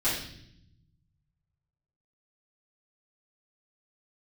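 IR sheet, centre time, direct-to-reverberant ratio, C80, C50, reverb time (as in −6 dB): 47 ms, −12.5 dB, 6.5 dB, 2.5 dB, 0.70 s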